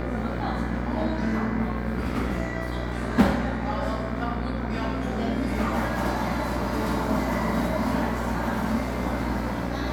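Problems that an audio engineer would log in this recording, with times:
mains buzz 60 Hz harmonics 40 −31 dBFS

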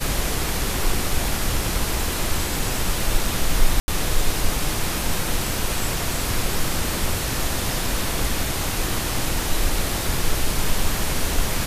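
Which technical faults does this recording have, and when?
0:03.80–0:03.88: drop-out 80 ms

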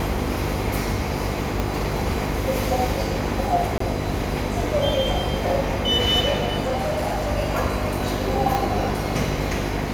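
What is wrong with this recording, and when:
mains buzz 50 Hz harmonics 9 −28 dBFS
0:01.60: click
0:03.78–0:03.80: drop-out 24 ms
0:06.62–0:07.30: clipping −20 dBFS
0:08.55: click

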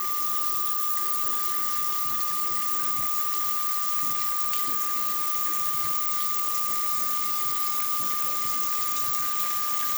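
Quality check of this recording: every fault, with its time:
whistle 1,200 Hz −30 dBFS

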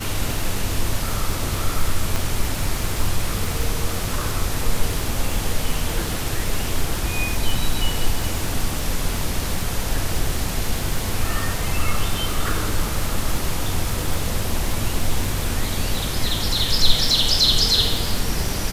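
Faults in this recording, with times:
surface crackle 82 per second −24 dBFS
0:02.16: click

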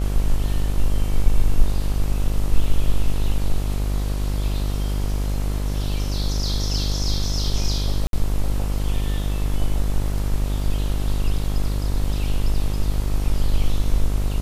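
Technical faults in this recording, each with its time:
mains buzz 50 Hz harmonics 27 −23 dBFS
0:08.07–0:08.13: drop-out 62 ms

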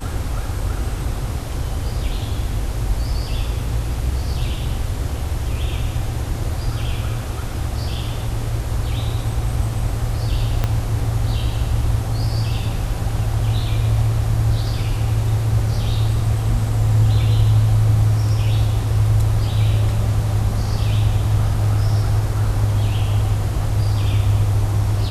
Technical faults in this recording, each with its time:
0:10.64: click −7 dBFS

